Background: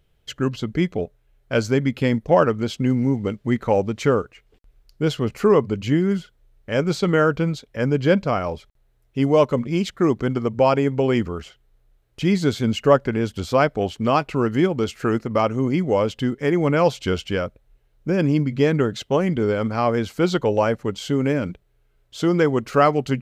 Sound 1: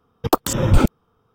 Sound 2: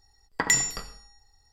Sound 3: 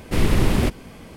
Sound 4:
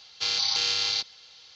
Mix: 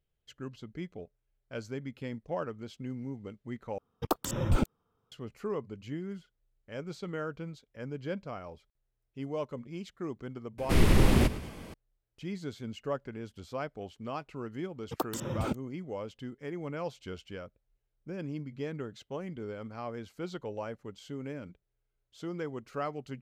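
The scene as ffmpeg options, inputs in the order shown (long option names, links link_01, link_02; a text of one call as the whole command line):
ffmpeg -i bed.wav -i cue0.wav -i cue1.wav -i cue2.wav -filter_complex "[1:a]asplit=2[link_01][link_02];[0:a]volume=-19dB[link_03];[3:a]aecho=1:1:109|218|327|436:0.158|0.0745|0.035|0.0165[link_04];[link_02]highpass=99[link_05];[link_03]asplit=2[link_06][link_07];[link_06]atrim=end=3.784[link_08];[link_01]atrim=end=1.34,asetpts=PTS-STARTPTS,volume=-12.5dB[link_09];[link_07]atrim=start=5.116[link_10];[link_04]atrim=end=1.16,asetpts=PTS-STARTPTS,volume=-4dB,afade=type=in:duration=0.004:curve=hsin,afade=type=out:start_time=1.156:duration=0.004:curve=hsin,adelay=466578S[link_11];[link_05]atrim=end=1.34,asetpts=PTS-STARTPTS,volume=-15.5dB,afade=type=in:duration=0.004:curve=hsin,afade=type=out:start_time=1.336:duration=0.004:curve=hsin,adelay=14670[link_12];[link_08][link_09]acrossfade=duration=0.004:curve1=hsin:curve2=hsin[link_13];[link_13][link_10]acrossfade=duration=0.004:curve1=hsin:curve2=hsin[link_14];[link_14][link_11][link_12]amix=inputs=3:normalize=0" out.wav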